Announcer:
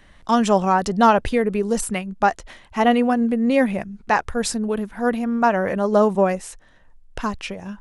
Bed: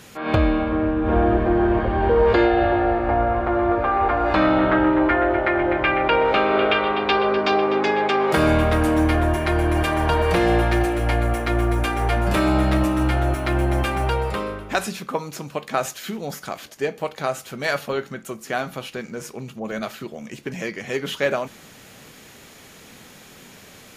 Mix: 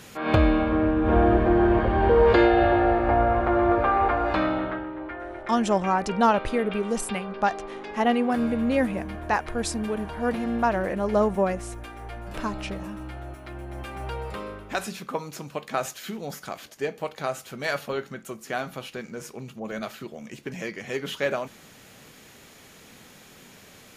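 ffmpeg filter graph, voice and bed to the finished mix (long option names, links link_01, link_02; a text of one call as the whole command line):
ffmpeg -i stem1.wav -i stem2.wav -filter_complex "[0:a]adelay=5200,volume=-5.5dB[link_01];[1:a]volume=12dB,afade=type=out:start_time=3.88:duration=0.98:silence=0.149624,afade=type=in:start_time=13.67:duration=1.41:silence=0.223872[link_02];[link_01][link_02]amix=inputs=2:normalize=0" out.wav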